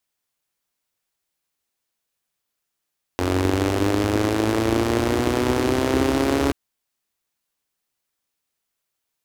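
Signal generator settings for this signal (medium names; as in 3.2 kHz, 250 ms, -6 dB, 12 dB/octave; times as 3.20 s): four-cylinder engine model, changing speed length 3.33 s, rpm 2700, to 4200, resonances 85/300 Hz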